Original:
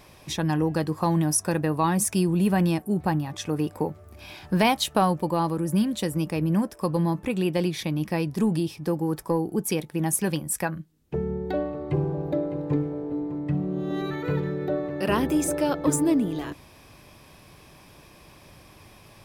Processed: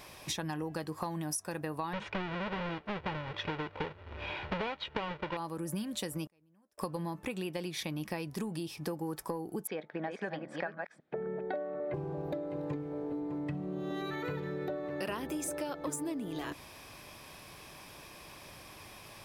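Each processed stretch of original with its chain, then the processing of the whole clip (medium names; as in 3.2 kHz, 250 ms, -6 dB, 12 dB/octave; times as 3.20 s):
1.93–5.37 s: square wave that keeps the level + low-pass 3.2 kHz 24 dB/octave + comb 2.1 ms, depth 39%
6.26–6.78 s: compression 1.5:1, threshold -33 dBFS + inverted gate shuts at -31 dBFS, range -36 dB
9.67–11.94 s: chunks repeated in reverse 266 ms, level -5.5 dB + cabinet simulation 250–3100 Hz, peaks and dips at 340 Hz -4 dB, 640 Hz +7 dB, 980 Hz -5 dB, 1.6 kHz +4 dB, 2.8 kHz -10 dB
whole clip: bass shelf 400 Hz -8.5 dB; compression 10:1, threshold -36 dBFS; trim +2.5 dB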